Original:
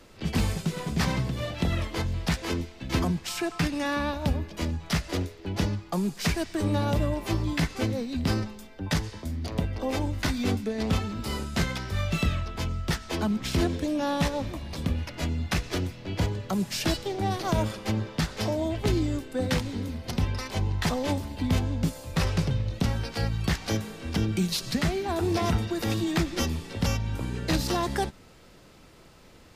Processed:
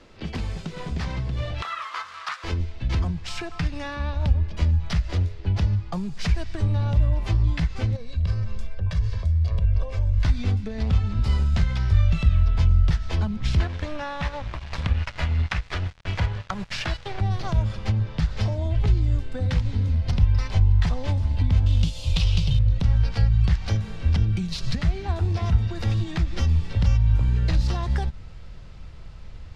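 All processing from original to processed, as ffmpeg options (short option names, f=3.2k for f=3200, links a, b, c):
-filter_complex "[0:a]asettb=1/sr,asplit=3[a][b][c];[a]atrim=end=1.624[d];[b]atrim=start=1.62:end=2.44,asetpts=PTS-STARTPTS,afade=t=in:d=0.004:c=qsin,afade=t=out:st=0.816:d=0.004:c=qsin,acrusher=bits=6:mix=0:aa=0.5,highpass=f=1.2k:t=q:w=7.4[e];[c]atrim=start=2.436[f];[d][e]acrossfade=d=0.004:c1=hsin:c2=qsin[g];[g][f]acrossfade=d=0.004:c1=qsin:c2=hsin,asettb=1/sr,asplit=3[h][i][j];[h]atrim=end=7.964[k];[i]atrim=start=7.96:end=10.25,asetpts=PTS-STARTPTS,afade=t=in:d=0.004:c=qsin,afade=t=out:st=2.286:d=0.004:c=qsin,acompressor=threshold=-37dB:ratio=4:attack=3.2:release=140:knee=1:detection=peak,aecho=1:1:1.8:0.71,atrim=end_sample=100989[l];[j]atrim=start=10.246[m];[k][l]acrossfade=d=0.004:c1=hsin:c2=qsin[n];[n][m]acrossfade=d=0.004:c1=qsin:c2=hsin,asettb=1/sr,asplit=3[o][p][q];[o]atrim=end=13.604[r];[p]atrim=start=13.6:end=17.21,asetpts=PTS-STARTPTS,afade=t=in:d=0.004:c=qsin,afade=t=out:st=3.606:d=0.004:c=qsin,equalizer=f=1.5k:w=0.39:g=14.5,aeval=exprs='sgn(val(0))*max(abs(val(0))-0.0266,0)':c=same[s];[q]atrim=start=17.206[t];[r][s]acrossfade=d=0.004:c1=hsin:c2=qsin[u];[u][t]acrossfade=d=0.004:c1=qsin:c2=hsin,asettb=1/sr,asplit=3[v][w][x];[v]atrim=end=21.664[y];[w]atrim=start=21.66:end=22.59,asetpts=PTS-STARTPTS,afade=t=in:d=0.004:c=qsin,afade=t=out:st=0.926:d=0.004:c=qsin,highshelf=f=2.3k:t=q:w=3:g=10,acrusher=bits=3:mode=log:mix=0:aa=0.000001[z];[x]atrim=start=22.586[aa];[y][z]acrossfade=d=0.004:c1=hsin:c2=qsin[ab];[ab][aa]acrossfade=d=0.004:c1=qsin:c2=hsin,lowpass=5.2k,acompressor=threshold=-29dB:ratio=6,asubboost=boost=10.5:cutoff=91,volume=1.5dB"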